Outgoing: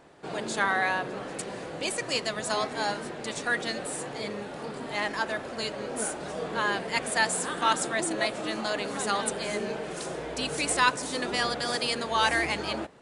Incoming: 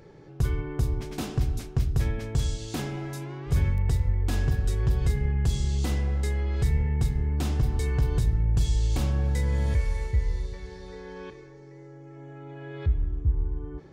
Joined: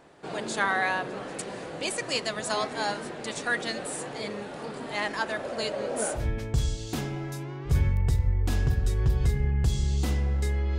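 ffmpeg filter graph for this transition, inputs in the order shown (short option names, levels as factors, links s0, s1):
-filter_complex "[0:a]asettb=1/sr,asplit=3[s0][s1][s2];[s0]atrim=end=5.394[s3];[s1]atrim=start=5.39:end=6.28,asetpts=PTS-STARTPTS,afade=t=in:d=0.004:c=qsin,afade=t=out:st=0.886:d=0.004:c=qsin,equalizer=f=580:t=o:w=0.57:g=7.5[s4];[s2]atrim=start=6.276[s5];[s3][s4]acrossfade=d=0.004:c1=hsin:c2=qsin[s6];[s6][s5]acrossfade=d=0.004:c1=qsin:c2=hsin,apad=whole_dur=10.78,atrim=end=10.78,atrim=end=6.28,asetpts=PTS-STARTPTS[s7];[1:a]atrim=start=1.95:end=6.59,asetpts=PTS-STARTPTS[s8];[s7][s8]acrossfade=d=0.14:c1=tri:c2=tri"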